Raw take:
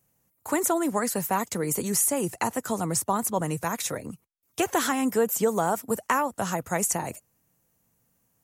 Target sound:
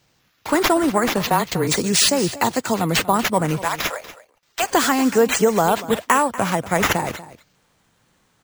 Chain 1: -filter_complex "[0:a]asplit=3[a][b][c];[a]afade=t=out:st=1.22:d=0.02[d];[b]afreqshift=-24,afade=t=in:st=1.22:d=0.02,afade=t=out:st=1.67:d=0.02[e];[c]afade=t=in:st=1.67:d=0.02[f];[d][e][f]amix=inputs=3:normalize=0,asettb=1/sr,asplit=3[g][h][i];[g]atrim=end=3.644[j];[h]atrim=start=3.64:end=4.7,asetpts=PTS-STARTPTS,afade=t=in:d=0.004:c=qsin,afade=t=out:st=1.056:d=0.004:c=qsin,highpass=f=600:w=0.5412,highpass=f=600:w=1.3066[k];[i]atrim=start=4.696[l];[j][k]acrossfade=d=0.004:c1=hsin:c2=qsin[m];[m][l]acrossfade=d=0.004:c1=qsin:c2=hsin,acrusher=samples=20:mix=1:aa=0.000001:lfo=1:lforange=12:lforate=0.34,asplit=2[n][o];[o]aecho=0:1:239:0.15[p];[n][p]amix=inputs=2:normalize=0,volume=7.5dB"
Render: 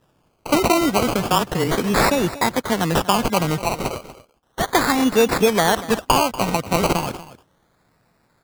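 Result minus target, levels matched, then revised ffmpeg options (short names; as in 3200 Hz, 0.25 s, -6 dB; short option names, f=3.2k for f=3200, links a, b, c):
decimation with a swept rate: distortion +8 dB
-filter_complex "[0:a]asplit=3[a][b][c];[a]afade=t=out:st=1.22:d=0.02[d];[b]afreqshift=-24,afade=t=in:st=1.22:d=0.02,afade=t=out:st=1.67:d=0.02[e];[c]afade=t=in:st=1.67:d=0.02[f];[d][e][f]amix=inputs=3:normalize=0,asettb=1/sr,asplit=3[g][h][i];[g]atrim=end=3.644[j];[h]atrim=start=3.64:end=4.7,asetpts=PTS-STARTPTS,afade=t=in:d=0.004:c=qsin,afade=t=out:st=1.056:d=0.004:c=qsin,highpass=f=600:w=0.5412,highpass=f=600:w=1.3066[k];[i]atrim=start=4.696[l];[j][k]acrossfade=d=0.004:c1=hsin:c2=qsin[m];[m][l]acrossfade=d=0.004:c1=qsin:c2=hsin,acrusher=samples=4:mix=1:aa=0.000001:lfo=1:lforange=2.4:lforate=0.34,asplit=2[n][o];[o]aecho=0:1:239:0.15[p];[n][p]amix=inputs=2:normalize=0,volume=7.5dB"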